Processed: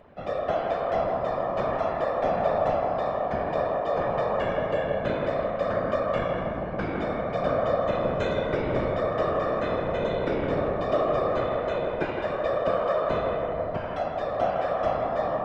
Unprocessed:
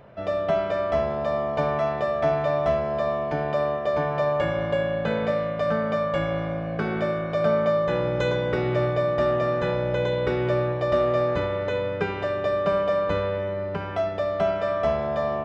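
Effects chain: whisperiser; narrowing echo 0.161 s, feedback 73%, band-pass 800 Hz, level -3.5 dB; gain -4 dB

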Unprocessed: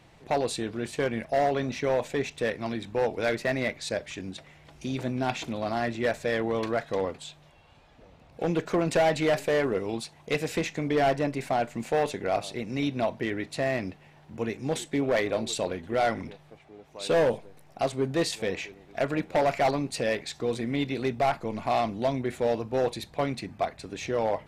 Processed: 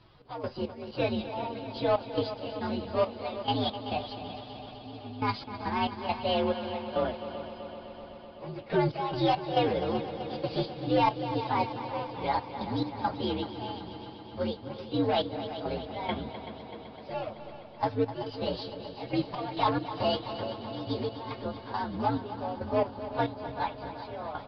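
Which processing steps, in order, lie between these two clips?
inharmonic rescaling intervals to 125%; 20.95–21.93 compressor 2.5:1, threshold -33 dBFS, peak gain reduction 8 dB; step gate "x.x.xx.." 69 bpm -12 dB; on a send: multi-head echo 0.127 s, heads second and third, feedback 71%, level -12.5 dB; on the sum: downsampling 11025 Hz; gain +2 dB

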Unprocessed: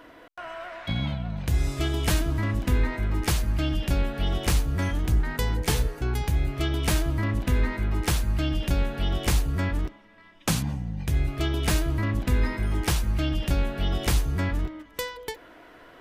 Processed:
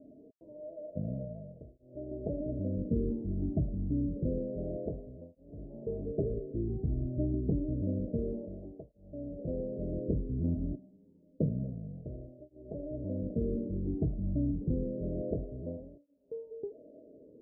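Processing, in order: speed mistake 48 kHz file played as 44.1 kHz; rippled Chebyshev low-pass 640 Hz, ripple 3 dB; tape flanging out of phase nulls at 0.28 Hz, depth 2.1 ms; gain +1.5 dB

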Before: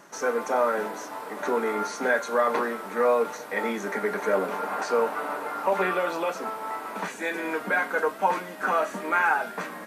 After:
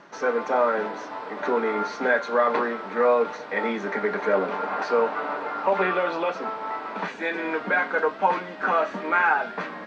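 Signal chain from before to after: LPF 4600 Hz 24 dB/oct; gain +2 dB

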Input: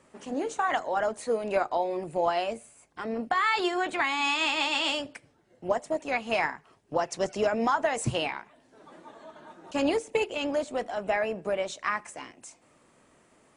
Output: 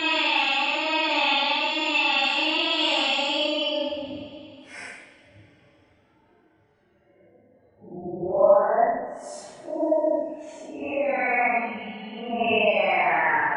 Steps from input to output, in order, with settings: spectral gate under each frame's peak -25 dB strong; Paulstretch 6.6×, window 0.05 s, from 4.43; reverb, pre-delay 3 ms, DRR -2.5 dB

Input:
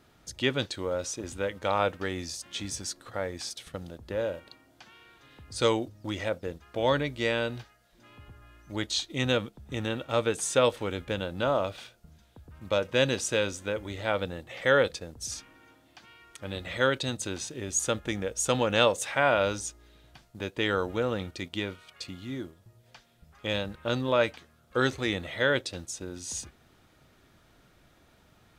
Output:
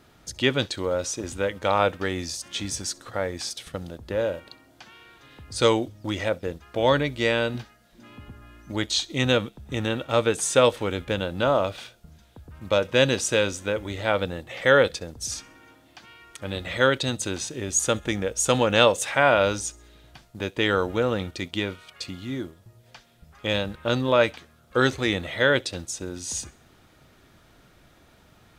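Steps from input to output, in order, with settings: 7.54–8.72 bell 230 Hz +8.5 dB 0.77 oct; thin delay 66 ms, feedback 42%, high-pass 2700 Hz, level -24 dB; gain +5 dB

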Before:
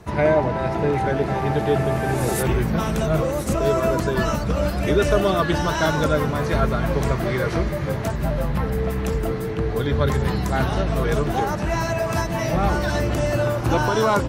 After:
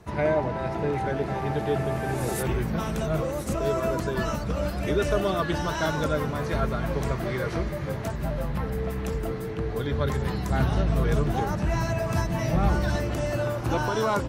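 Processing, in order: 10.5–12.96 tone controls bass +6 dB, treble 0 dB; gain -6 dB

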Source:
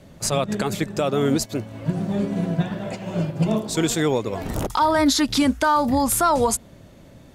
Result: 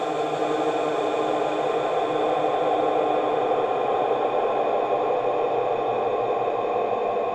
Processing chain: vowel filter a; added harmonics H 5 -7 dB, 6 -24 dB, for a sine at -15 dBFS; Paulstretch 34×, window 0.50 s, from 4.04; on a send: multi-head echo 0.172 s, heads first and second, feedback 69%, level -8.5 dB; on the sum: gain +1 dB

